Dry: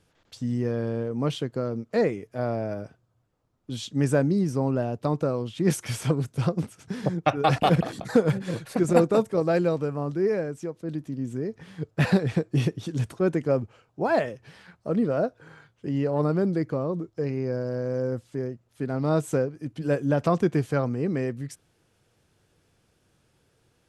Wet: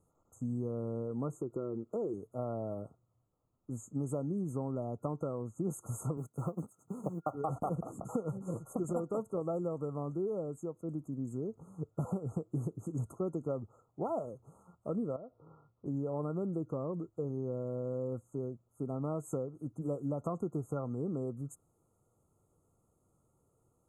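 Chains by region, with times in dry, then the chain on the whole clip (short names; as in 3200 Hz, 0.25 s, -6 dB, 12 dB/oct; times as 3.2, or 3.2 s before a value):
1.31–2.14 bell 360 Hz +12 dB 0.5 oct + compressor 2:1, threshold -29 dBFS
6.17–7.35 G.711 law mismatch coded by A + HPF 140 Hz
15.16–15.86 compressor 5:1, threshold -37 dBFS + air absorption 350 m
whole clip: compressor 6:1, threshold -25 dBFS; FFT band-reject 1400–6300 Hz; gain -6.5 dB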